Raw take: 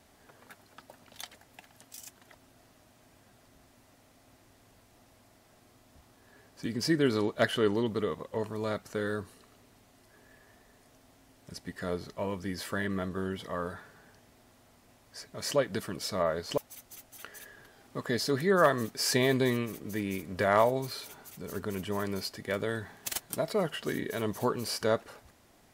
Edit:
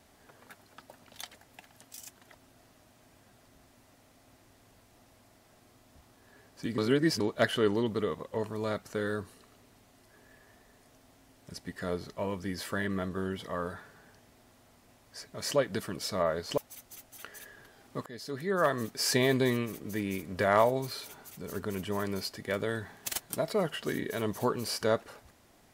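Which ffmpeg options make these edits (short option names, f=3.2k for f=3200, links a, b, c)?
-filter_complex "[0:a]asplit=4[a][b][c][d];[a]atrim=end=6.782[e];[b]atrim=start=6.778:end=7.202,asetpts=PTS-STARTPTS,areverse[f];[c]atrim=start=7.198:end=18.06,asetpts=PTS-STARTPTS,afade=t=out:st=10.858:d=0.004:c=hsin:silence=0.11885[g];[d]atrim=start=18.06,asetpts=PTS-STARTPTS,afade=t=in:d=0.95:silence=0.11885[h];[e][f]acrossfade=d=0.004:c1=hsin:c2=hsin[i];[g][h]concat=n=2:v=0:a=1[j];[i][j]acrossfade=d=0.004:c1=hsin:c2=hsin"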